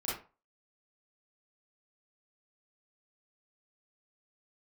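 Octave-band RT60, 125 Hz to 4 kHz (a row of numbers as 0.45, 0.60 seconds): 0.35, 0.30, 0.35, 0.35, 0.30, 0.20 seconds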